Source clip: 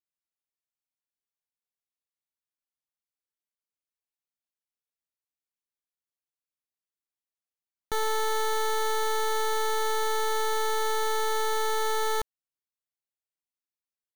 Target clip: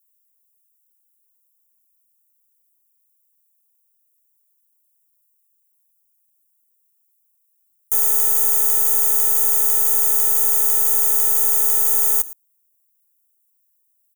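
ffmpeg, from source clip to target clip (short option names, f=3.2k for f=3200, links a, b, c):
-af "highshelf=f=12k:g=9.5,aecho=1:1:112:0.0944,aexciter=amount=12.9:drive=9.9:freq=6.3k,volume=-9.5dB"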